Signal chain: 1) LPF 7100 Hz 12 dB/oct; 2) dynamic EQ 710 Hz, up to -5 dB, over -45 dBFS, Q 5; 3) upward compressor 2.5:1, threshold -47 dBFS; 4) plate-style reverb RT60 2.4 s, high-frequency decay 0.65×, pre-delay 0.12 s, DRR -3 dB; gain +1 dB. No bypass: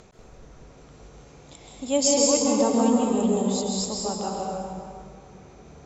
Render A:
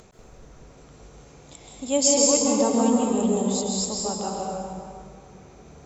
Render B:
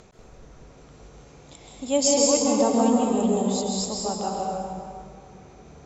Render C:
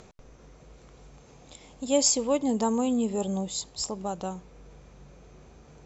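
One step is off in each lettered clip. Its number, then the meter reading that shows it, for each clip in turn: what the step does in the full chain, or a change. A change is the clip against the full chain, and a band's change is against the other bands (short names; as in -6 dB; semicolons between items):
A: 1, momentary loudness spread change +2 LU; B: 2, 1 kHz band +2.0 dB; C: 4, loudness change -4.5 LU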